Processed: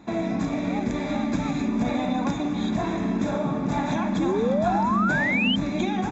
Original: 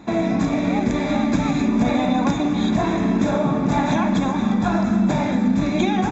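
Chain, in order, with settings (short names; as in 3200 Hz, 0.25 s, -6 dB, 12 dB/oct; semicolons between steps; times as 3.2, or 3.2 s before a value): painted sound rise, 4.18–5.56, 300–3200 Hz -19 dBFS; gain -6 dB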